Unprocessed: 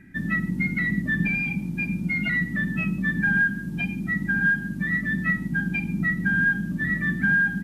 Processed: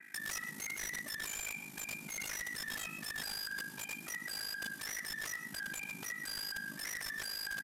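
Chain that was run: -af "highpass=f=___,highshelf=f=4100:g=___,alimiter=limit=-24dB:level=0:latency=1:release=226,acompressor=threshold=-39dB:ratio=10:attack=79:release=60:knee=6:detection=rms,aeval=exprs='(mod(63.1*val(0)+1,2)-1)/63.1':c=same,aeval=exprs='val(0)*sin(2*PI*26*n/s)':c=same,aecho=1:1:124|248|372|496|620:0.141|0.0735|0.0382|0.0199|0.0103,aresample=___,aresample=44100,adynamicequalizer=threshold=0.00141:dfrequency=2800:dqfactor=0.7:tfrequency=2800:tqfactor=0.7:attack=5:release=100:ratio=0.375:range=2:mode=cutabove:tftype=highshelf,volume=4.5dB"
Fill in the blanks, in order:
850, 11, 32000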